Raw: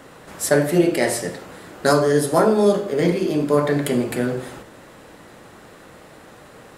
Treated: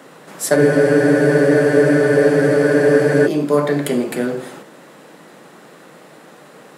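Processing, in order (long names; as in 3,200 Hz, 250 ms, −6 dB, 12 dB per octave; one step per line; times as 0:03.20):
Chebyshev high-pass filter 150 Hz, order 4
frozen spectrum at 0:00.58, 2.68 s
level +2.5 dB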